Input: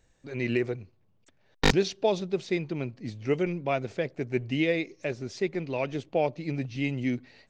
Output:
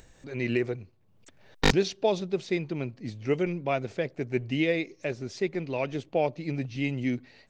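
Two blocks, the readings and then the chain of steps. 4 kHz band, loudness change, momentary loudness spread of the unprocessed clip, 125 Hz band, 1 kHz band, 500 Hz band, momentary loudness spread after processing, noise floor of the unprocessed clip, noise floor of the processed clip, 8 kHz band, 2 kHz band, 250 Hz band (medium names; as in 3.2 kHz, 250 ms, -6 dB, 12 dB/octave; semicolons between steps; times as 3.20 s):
0.0 dB, 0.0 dB, 9 LU, 0.0 dB, 0.0 dB, 0.0 dB, 9 LU, -66 dBFS, -60 dBFS, 0.0 dB, 0.0 dB, 0.0 dB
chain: upward compressor, threshold -44 dBFS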